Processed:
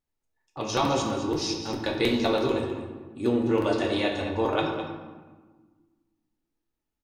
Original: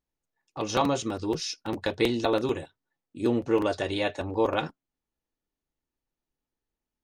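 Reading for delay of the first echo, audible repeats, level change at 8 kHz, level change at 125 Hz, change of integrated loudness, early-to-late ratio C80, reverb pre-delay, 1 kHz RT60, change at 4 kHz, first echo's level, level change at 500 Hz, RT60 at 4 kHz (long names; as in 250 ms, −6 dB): 208 ms, 1, +1.0 dB, +2.5 dB, +1.0 dB, 5.0 dB, 7 ms, 1.4 s, +3.0 dB, −11.5 dB, +1.0 dB, 0.80 s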